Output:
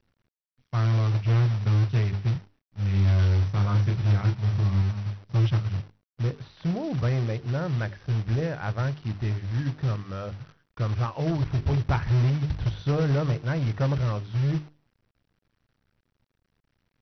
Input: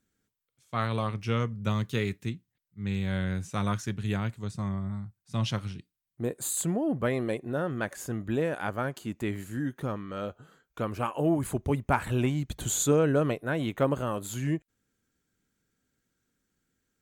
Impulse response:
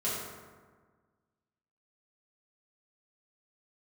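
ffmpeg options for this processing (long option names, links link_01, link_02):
-filter_complex "[0:a]lowpass=2500,lowshelf=frequency=170:width_type=q:width=1.5:gain=12,bandreject=frequency=50:width_type=h:width=6,bandreject=frequency=100:width_type=h:width=6,bandreject=frequency=150:width_type=h:width=6,bandreject=frequency=200:width_type=h:width=6,bandreject=frequency=250:width_type=h:width=6,bandreject=frequency=300:width_type=h:width=6,bandreject=frequency=350:width_type=h:width=6,bandreject=frequency=400:width_type=h:width=6,bandreject=frequency=450:width_type=h:width=6,acrusher=bits=9:dc=4:mix=0:aa=0.000001,asoftclip=type=tanh:threshold=-18dB,acrusher=bits=4:mode=log:mix=0:aa=0.000001,asettb=1/sr,asplit=3[link_01][link_02][link_03];[link_01]atrim=end=2.324[link_04];[link_02]atrim=start=2.32:end=4.82,asetpts=PTS-STARTPTS,afade=type=in:duration=0.004:curve=qsin,afade=type=out:start_time=2.496:duration=0.004:curve=qsin,asplit=2[link_05][link_06];[link_06]adelay=30,volume=-5dB[link_07];[link_05][link_07]amix=inputs=2:normalize=0,atrim=end_sample=110250[link_08];[link_03]atrim=start=4.816[link_09];[link_04][link_08]acrossfade=duration=0.004:curve1=hsin:curve2=qsin[link_10];[link_10][link_09]acrossfade=duration=0.004:curve1=qsin:curve2=hsin" -ar 48000 -c:a mp2 -b:a 48k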